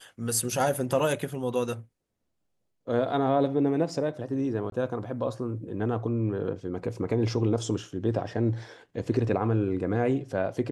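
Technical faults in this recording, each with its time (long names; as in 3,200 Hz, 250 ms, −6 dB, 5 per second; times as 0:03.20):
0:04.70–0:04.72: drop-out 22 ms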